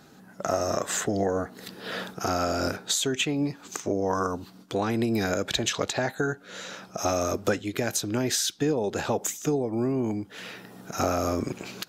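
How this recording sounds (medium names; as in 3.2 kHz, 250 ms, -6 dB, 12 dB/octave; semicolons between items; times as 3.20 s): noise floor -51 dBFS; spectral tilt -4.0 dB/octave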